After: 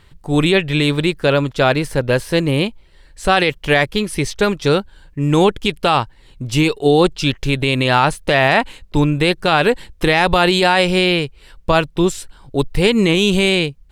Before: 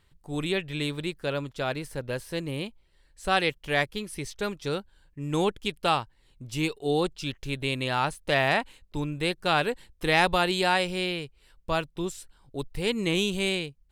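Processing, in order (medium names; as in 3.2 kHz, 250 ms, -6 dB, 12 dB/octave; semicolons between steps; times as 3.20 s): treble shelf 6.7 kHz -6.5 dB; loudness maximiser +18 dB; trim -2 dB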